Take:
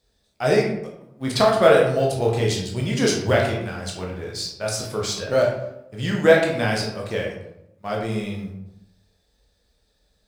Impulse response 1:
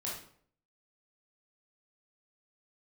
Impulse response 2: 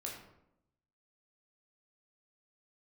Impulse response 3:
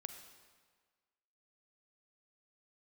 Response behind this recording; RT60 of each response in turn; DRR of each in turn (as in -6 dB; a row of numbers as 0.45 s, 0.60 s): 2; 0.55 s, 0.80 s, 1.6 s; -5.5 dB, -2.0 dB, 7.0 dB